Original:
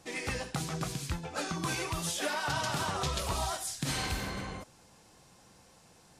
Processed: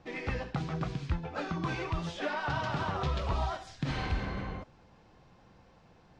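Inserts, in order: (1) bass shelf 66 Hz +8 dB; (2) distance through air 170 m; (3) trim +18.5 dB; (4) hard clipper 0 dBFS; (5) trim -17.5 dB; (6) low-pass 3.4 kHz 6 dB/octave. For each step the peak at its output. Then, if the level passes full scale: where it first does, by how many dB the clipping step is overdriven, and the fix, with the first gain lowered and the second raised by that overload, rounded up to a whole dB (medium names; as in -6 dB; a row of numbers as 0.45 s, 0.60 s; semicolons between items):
-19.0 dBFS, -20.0 dBFS, -1.5 dBFS, -1.5 dBFS, -19.0 dBFS, -19.5 dBFS; nothing clips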